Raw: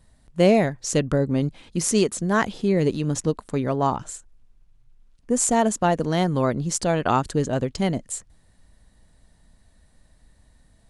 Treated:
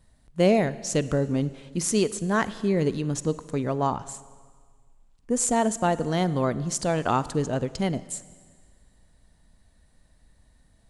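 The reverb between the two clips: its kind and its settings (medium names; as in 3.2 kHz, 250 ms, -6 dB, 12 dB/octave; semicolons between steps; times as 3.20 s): Schroeder reverb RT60 1.7 s, DRR 16 dB; trim -3 dB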